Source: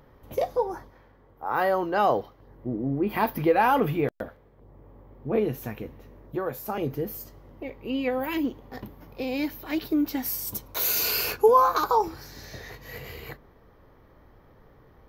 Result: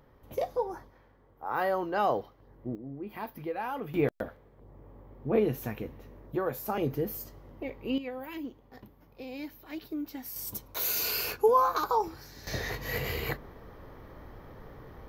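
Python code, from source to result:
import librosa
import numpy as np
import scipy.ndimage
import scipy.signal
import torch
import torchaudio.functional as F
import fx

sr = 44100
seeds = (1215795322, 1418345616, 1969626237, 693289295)

y = fx.gain(x, sr, db=fx.steps((0.0, -5.0), (2.75, -14.0), (3.94, -1.0), (7.98, -11.5), (10.36, -5.0), (12.47, 7.0)))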